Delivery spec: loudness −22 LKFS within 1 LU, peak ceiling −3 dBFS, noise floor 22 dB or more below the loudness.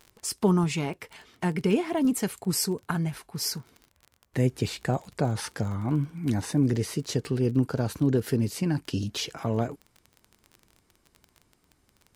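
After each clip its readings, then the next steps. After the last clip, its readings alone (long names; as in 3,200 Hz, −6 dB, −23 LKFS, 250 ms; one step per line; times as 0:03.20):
crackle rate 26 per second; integrated loudness −28.0 LKFS; sample peak −12.0 dBFS; target loudness −22.0 LKFS
→ click removal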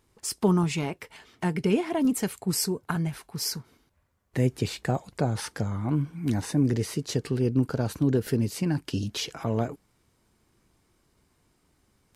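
crackle rate 0.082 per second; integrated loudness −28.0 LKFS; sample peak −12.0 dBFS; target loudness −22.0 LKFS
→ level +6 dB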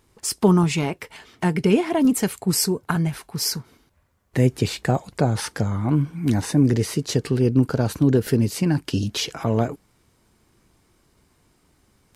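integrated loudness −22.0 LKFS; sample peak −6.0 dBFS; background noise floor −63 dBFS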